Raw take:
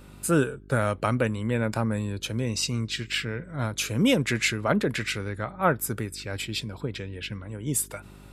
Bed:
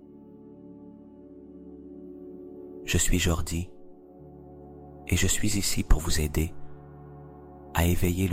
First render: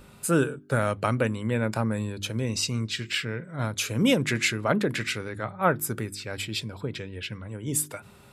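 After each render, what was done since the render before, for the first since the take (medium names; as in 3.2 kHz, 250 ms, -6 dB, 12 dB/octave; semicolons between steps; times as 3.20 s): de-hum 50 Hz, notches 7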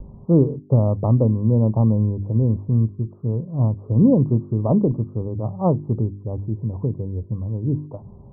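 steep low-pass 1.1 kHz 96 dB/octave; tilt EQ -4 dB/octave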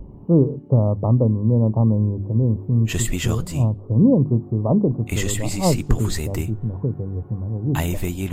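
add bed 0 dB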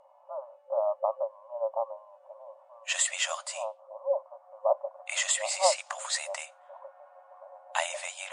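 FFT band-pass 530–10000 Hz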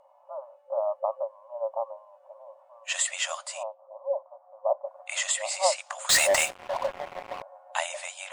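3.63–4.84 s: band-pass filter 680 Hz, Q 1.1; 6.09–7.42 s: waveshaping leveller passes 5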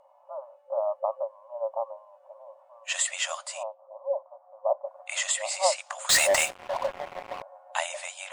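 no audible change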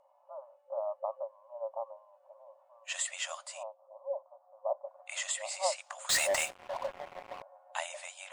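trim -7.5 dB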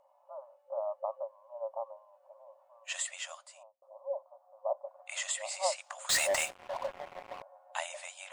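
2.89–3.82 s: fade out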